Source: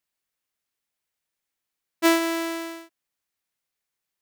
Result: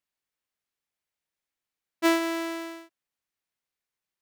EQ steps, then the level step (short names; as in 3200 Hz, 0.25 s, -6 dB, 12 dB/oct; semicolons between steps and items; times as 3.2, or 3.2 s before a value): high shelf 6000 Hz -5.5 dB; -3.0 dB